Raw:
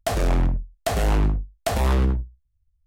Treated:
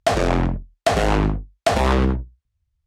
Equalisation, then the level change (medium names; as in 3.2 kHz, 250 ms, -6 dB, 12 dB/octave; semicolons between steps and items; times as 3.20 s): high-pass 160 Hz 6 dB/octave; distance through air 60 m; +7.5 dB